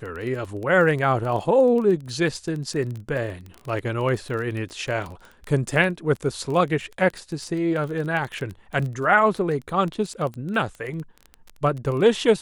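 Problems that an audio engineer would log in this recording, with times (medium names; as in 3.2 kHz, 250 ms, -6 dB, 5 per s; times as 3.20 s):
crackle 17 per s -28 dBFS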